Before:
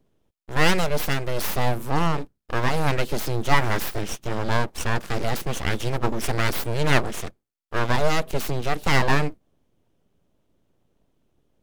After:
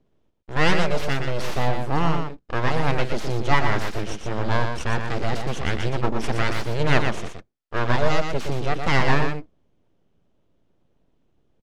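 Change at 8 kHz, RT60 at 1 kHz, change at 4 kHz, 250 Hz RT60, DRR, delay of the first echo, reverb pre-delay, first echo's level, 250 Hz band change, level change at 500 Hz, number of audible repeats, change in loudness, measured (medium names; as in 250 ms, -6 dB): -6.0 dB, no reverb, -1.0 dB, no reverb, no reverb, 119 ms, no reverb, -6.0 dB, +1.0 dB, +1.0 dB, 1, +0.5 dB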